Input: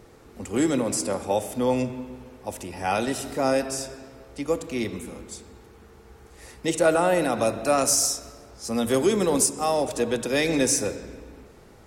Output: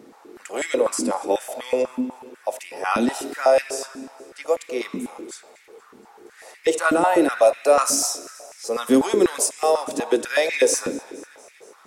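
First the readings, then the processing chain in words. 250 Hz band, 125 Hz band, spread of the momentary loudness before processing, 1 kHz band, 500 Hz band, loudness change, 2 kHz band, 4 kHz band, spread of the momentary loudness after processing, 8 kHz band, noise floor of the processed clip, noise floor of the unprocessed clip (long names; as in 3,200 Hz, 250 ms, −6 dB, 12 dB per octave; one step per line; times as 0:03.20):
+1.5 dB, −11.0 dB, 17 LU, +4.0 dB, +4.0 dB, +2.5 dB, +4.5 dB, +0.5 dB, 18 LU, 0.0 dB, −52 dBFS, −50 dBFS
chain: feedback echo with a high-pass in the loop 236 ms, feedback 68%, high-pass 1,100 Hz, level −22 dB
high-pass on a step sequencer 8.1 Hz 250–2,100 Hz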